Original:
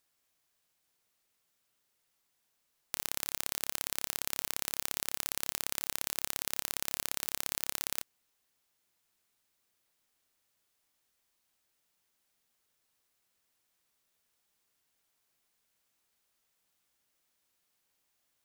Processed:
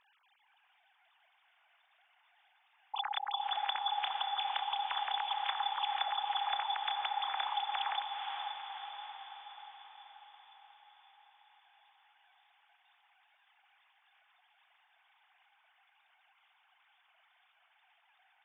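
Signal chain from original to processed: sine-wave speech; diffused feedback echo 0.489 s, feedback 60%, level -4 dB

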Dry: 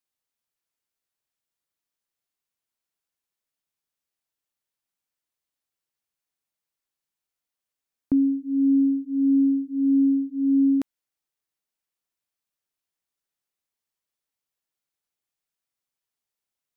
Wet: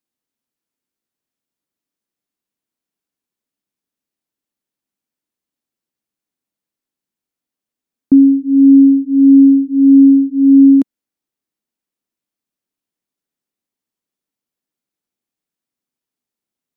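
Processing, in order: bell 250 Hz +13.5 dB 1.5 oct

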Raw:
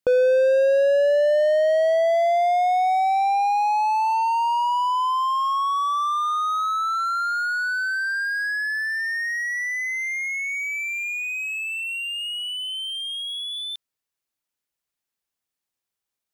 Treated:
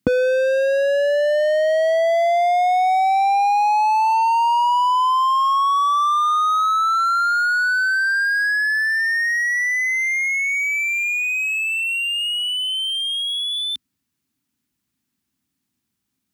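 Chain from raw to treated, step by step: HPF 58 Hz 24 dB/oct; resonant low shelf 360 Hz +11.5 dB, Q 3; soft clip -12.5 dBFS, distortion -31 dB; gain +7 dB

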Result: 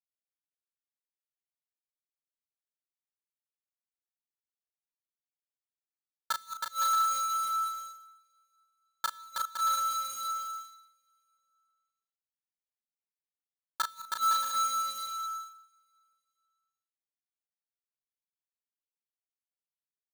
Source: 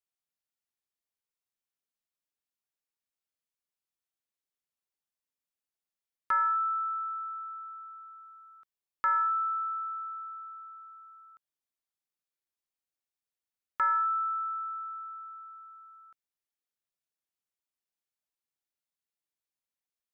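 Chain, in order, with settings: half-waves squared off; gate -36 dBFS, range -23 dB; chorus voices 6, 0.18 Hz, delay 19 ms, depth 3.1 ms; in parallel at -4.5 dB: requantised 6-bit, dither none; on the sum: flipped gate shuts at -19 dBFS, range -28 dB; doubler 35 ms -5.5 dB; on a send: bouncing-ball echo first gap 0.32 s, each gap 0.6×, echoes 5; on the sum: gain -2.5 dB

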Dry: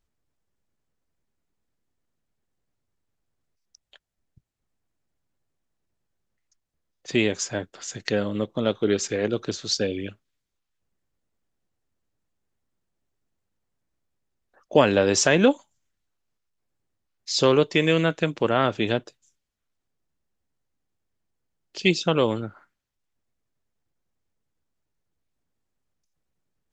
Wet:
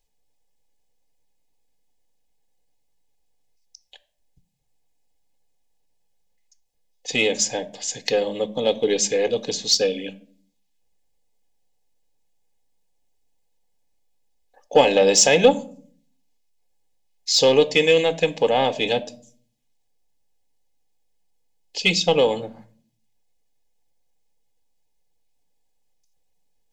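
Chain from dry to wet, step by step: low shelf 290 Hz -6.5 dB; fixed phaser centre 360 Hz, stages 6; in parallel at -5 dB: soft clip -20 dBFS, distortion -12 dB; on the sum: reverb RT60 0.55 s, pre-delay 11 ms, DRR 14.5 dB; gain +3.5 dB

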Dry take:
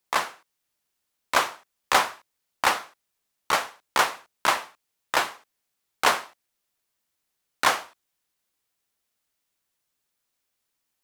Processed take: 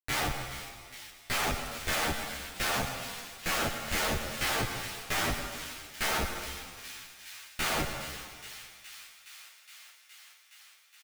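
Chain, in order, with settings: harmoniser -3 st -4 dB, +7 st -13 dB, +12 st 0 dB; low shelf 150 Hz -6.5 dB; Schmitt trigger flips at -30.5 dBFS; notch 1000 Hz, Q 7.6; thin delay 0.417 s, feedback 80%, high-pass 2300 Hz, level -11 dB; reverb RT60 2.0 s, pre-delay 85 ms, DRR 6 dB; endless flanger 10.4 ms -0.51 Hz

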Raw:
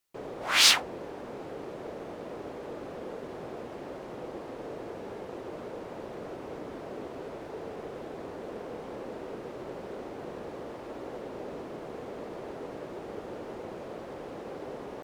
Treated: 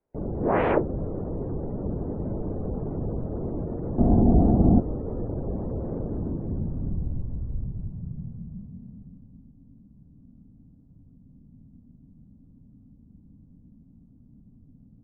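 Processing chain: spectral gate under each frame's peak -25 dB strong; low-pass sweep 860 Hz -> 110 Hz, 5.99–9.55; 3.98–4.8 small resonant body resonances 330/620/1100 Hz, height 17 dB, ringing for 25 ms; mistuned SSB -400 Hz 200–2900 Hz; gain +7.5 dB

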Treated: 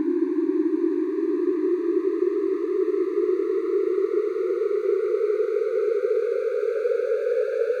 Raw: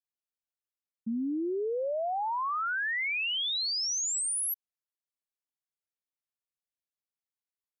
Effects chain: median filter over 41 samples; Paulstretch 22×, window 0.50 s, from 1.4; gain +8.5 dB

